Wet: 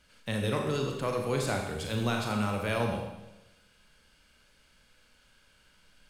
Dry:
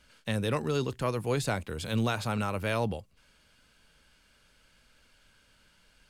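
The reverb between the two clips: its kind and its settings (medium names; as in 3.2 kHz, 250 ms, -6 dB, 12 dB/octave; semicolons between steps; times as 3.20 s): Schroeder reverb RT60 1 s, combs from 30 ms, DRR 1.5 dB; trim -2 dB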